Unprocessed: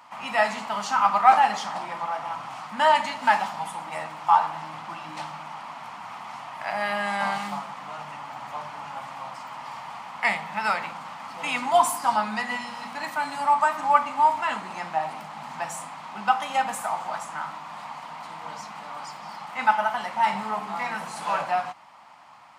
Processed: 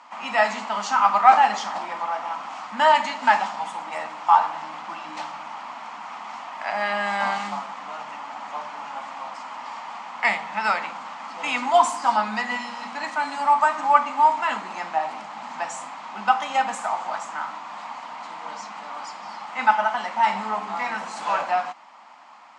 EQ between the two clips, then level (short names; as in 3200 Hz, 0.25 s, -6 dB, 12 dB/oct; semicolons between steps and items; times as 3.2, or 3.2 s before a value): elliptic band-pass 220–7400 Hz, stop band 40 dB; +2.5 dB